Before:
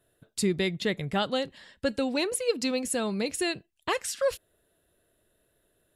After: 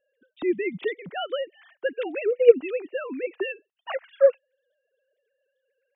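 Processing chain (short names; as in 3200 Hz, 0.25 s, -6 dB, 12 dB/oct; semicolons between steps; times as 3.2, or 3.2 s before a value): sine-wave speech; gain +4.5 dB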